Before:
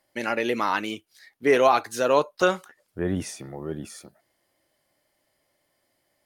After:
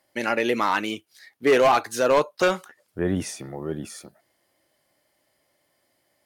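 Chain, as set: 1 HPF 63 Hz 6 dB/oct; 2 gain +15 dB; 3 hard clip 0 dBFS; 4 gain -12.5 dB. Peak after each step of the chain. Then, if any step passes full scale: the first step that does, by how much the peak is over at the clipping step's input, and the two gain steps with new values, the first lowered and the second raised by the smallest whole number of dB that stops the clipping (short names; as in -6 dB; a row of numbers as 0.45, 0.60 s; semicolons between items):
-6.5, +8.5, 0.0, -12.5 dBFS; step 2, 8.5 dB; step 2 +6 dB, step 4 -3.5 dB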